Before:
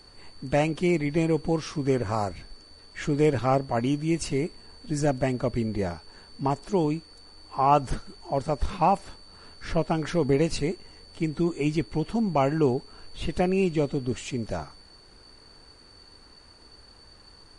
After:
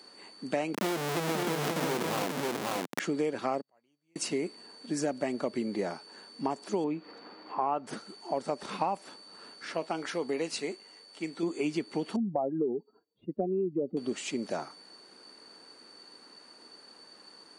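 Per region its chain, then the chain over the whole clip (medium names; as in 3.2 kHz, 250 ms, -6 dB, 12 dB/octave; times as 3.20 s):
0.74–3.00 s: peaking EQ 150 Hz +14.5 dB 0.24 oct + Schmitt trigger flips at -31.5 dBFS + delay 537 ms -3.5 dB
3.61–4.16 s: peaking EQ 270 Hz -9 dB 0.91 oct + inverted gate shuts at -30 dBFS, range -40 dB
6.84–7.87 s: low-pass 2.4 kHz + upward compressor, threshold -33 dBFS
9.65–11.43 s: bass shelf 370 Hz -9.5 dB + feedback comb 54 Hz, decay 0.19 s, mix 40%
12.16–13.97 s: spectral contrast enhancement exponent 2.1 + low-pass 1 kHz
whole clip: high-pass 210 Hz 24 dB/octave; compression 5:1, threshold -27 dBFS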